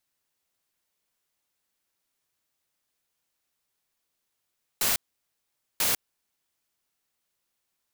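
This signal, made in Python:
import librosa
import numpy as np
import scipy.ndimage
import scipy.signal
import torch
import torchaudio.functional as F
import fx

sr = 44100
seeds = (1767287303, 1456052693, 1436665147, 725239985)

y = fx.noise_burst(sr, seeds[0], colour='white', on_s=0.15, off_s=0.84, bursts=2, level_db=-24.5)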